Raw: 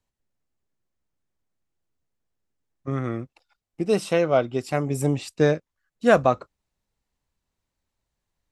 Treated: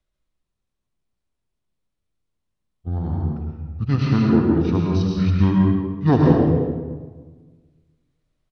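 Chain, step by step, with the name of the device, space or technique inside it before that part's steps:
monster voice (pitch shifter −7.5 semitones; formants moved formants −4 semitones; low-shelf EQ 140 Hz +4.5 dB; single-tap delay 77 ms −10 dB; convolution reverb RT60 1.4 s, pre-delay 99 ms, DRR −1.5 dB)
level −1 dB

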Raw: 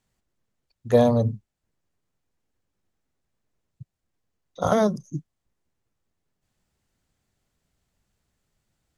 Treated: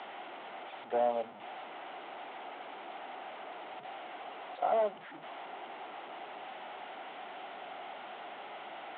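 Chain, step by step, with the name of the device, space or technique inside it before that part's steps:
digital answering machine (band-pass filter 310–3,400 Hz; linear delta modulator 16 kbit/s, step −31 dBFS; loudspeaker in its box 460–4,100 Hz, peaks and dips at 500 Hz −6 dB, 750 Hz +9 dB, 1,100 Hz −4 dB, 1,700 Hz −8 dB, 2,500 Hz −6 dB, 3,900 Hz +3 dB)
level −6 dB

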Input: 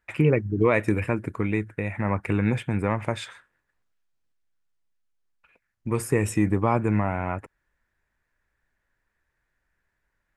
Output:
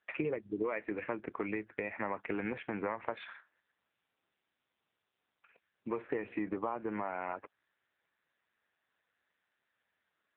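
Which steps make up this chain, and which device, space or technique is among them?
voicemail (band-pass filter 370–2,800 Hz; downward compressor 8 to 1, threshold −31 dBFS, peak gain reduction 14 dB; AMR narrowband 6.7 kbit/s 8,000 Hz)

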